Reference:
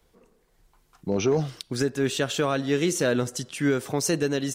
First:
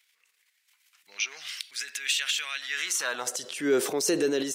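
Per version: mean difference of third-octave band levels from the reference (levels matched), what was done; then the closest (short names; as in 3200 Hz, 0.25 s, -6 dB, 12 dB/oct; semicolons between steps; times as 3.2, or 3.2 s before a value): 11.0 dB: bell 540 Hz -6.5 dB 2.9 oct; transient shaper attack -2 dB, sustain +10 dB; high-pass sweep 2200 Hz -> 380 Hz, 2.62–3.62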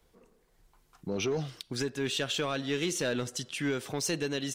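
2.5 dB: dynamic EQ 3200 Hz, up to +8 dB, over -46 dBFS, Q 0.87; in parallel at 0 dB: compressor, threshold -37 dBFS, peak gain reduction 17.5 dB; on the sum: soft clip -12.5 dBFS, distortion -20 dB; gain -8.5 dB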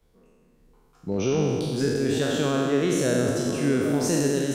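7.5 dB: spectral trails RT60 2.14 s; low shelf 470 Hz +7.5 dB; on a send: delay with a stepping band-pass 0.262 s, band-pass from 220 Hz, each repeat 0.7 oct, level -2 dB; on the sum: gain -8 dB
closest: second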